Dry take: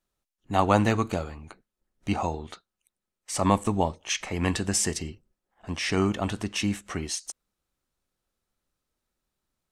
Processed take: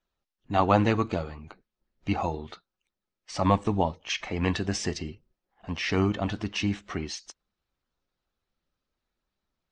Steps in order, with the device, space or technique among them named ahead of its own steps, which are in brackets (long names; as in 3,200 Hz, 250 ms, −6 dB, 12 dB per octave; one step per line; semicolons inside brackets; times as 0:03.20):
clip after many re-uploads (low-pass filter 5,400 Hz 24 dB per octave; spectral magnitudes quantised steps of 15 dB)